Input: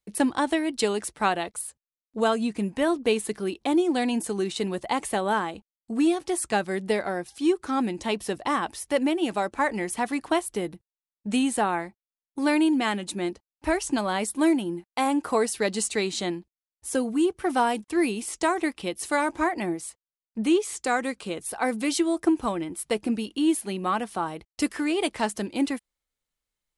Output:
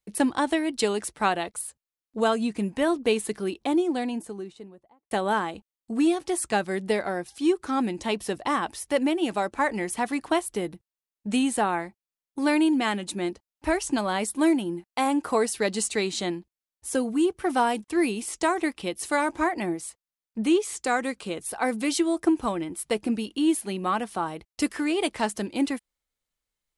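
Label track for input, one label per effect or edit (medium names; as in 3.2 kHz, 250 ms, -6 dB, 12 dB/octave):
3.400000	5.110000	studio fade out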